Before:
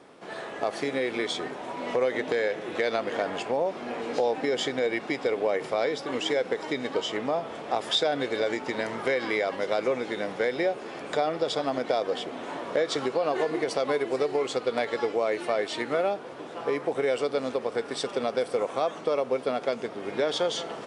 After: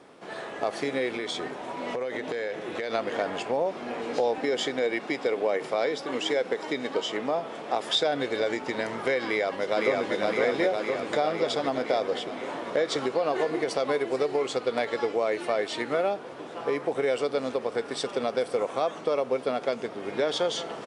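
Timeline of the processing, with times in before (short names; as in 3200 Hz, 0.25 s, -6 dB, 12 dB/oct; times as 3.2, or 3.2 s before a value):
1.08–2.9 compressor, threshold -27 dBFS
4.38–7.96 HPF 150 Hz
9.25–10.15 echo throw 0.51 s, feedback 70%, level -1.5 dB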